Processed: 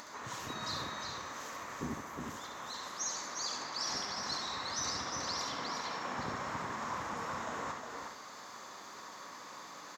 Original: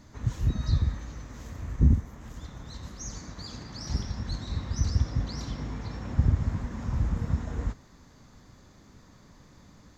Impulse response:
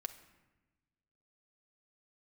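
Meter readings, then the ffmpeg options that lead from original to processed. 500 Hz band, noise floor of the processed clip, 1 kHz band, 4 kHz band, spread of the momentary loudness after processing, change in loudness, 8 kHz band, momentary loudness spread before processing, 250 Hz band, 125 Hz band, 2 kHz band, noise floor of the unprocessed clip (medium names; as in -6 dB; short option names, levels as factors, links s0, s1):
+1.0 dB, -50 dBFS, +9.0 dB, +6.0 dB, 12 LU, -8.5 dB, no reading, 17 LU, -10.5 dB, -23.5 dB, +7.0 dB, -55 dBFS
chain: -filter_complex "[0:a]highpass=590,equalizer=f=1100:t=o:w=0.58:g=5.5,acompressor=mode=upward:threshold=0.00447:ratio=2.5,aecho=1:1:359:0.562,asplit=2[s0][s1];[1:a]atrim=start_sample=2205,adelay=68[s2];[s1][s2]afir=irnorm=-1:irlink=0,volume=0.708[s3];[s0][s3]amix=inputs=2:normalize=0,volume=1.5"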